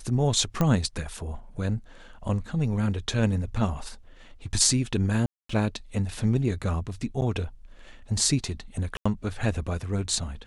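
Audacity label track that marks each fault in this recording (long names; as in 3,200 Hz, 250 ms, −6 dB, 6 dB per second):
0.610000	0.610000	click −12 dBFS
5.260000	5.490000	drop-out 234 ms
7.210000	7.220000	drop-out 9.1 ms
8.970000	9.050000	drop-out 85 ms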